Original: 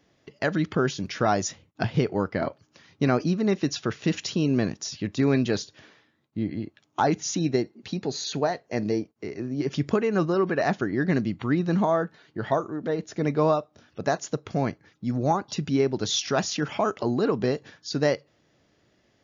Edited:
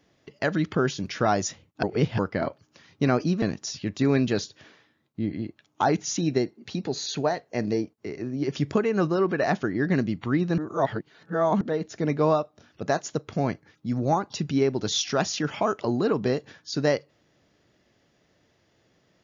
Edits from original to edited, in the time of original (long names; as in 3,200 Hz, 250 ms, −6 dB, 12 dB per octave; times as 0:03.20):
0:01.83–0:02.19: reverse
0:03.42–0:04.60: remove
0:11.76–0:12.79: reverse